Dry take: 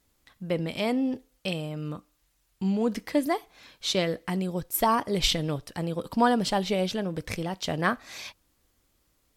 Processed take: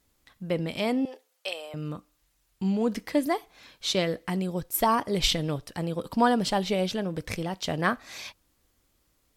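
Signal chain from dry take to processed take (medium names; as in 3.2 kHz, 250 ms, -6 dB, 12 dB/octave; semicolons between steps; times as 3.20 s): 1.05–1.74 s: high-pass 500 Hz 24 dB/octave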